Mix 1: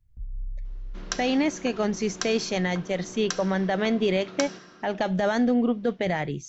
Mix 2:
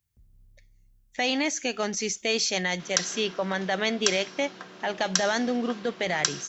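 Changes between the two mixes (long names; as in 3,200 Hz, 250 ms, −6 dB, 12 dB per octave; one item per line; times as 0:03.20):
first sound: add high-pass filter 100 Hz 6 dB per octave
second sound: entry +1.85 s
master: add spectral tilt +3 dB per octave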